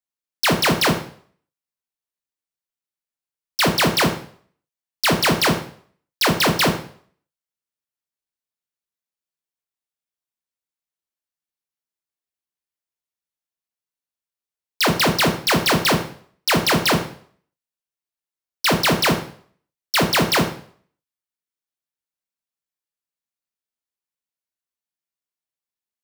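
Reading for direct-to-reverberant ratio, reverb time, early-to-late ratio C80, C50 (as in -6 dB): 4.0 dB, 0.55 s, 13.5 dB, 9.0 dB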